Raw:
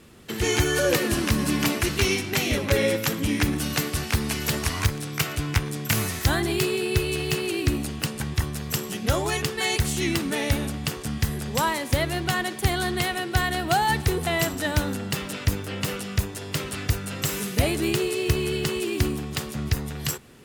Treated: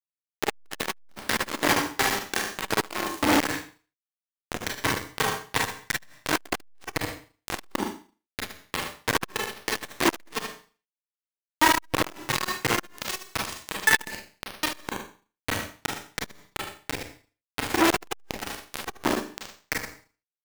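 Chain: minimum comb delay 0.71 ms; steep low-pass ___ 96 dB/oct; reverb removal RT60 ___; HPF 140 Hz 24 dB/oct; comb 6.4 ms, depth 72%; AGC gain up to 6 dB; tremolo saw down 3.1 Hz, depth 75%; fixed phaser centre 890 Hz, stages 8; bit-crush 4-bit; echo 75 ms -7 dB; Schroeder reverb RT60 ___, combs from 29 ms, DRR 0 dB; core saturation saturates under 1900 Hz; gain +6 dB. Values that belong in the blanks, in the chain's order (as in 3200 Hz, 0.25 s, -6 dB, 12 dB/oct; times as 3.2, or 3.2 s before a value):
2200 Hz, 1.6 s, 0.37 s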